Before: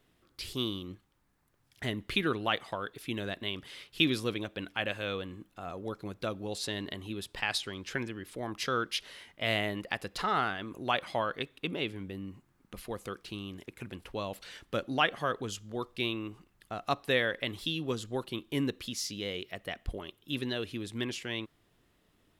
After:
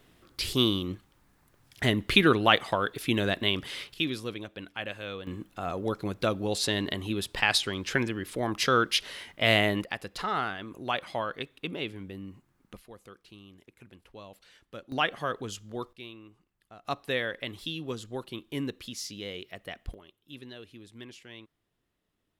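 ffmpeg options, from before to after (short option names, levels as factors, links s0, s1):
-af "asetnsamples=n=441:p=0,asendcmd='3.94 volume volume -3dB;5.27 volume volume 7.5dB;9.84 volume volume -0.5dB;12.77 volume volume -10.5dB;14.92 volume volume 0dB;15.93 volume volume -12dB;16.85 volume volume -2dB;19.94 volume volume -11dB',volume=2.82"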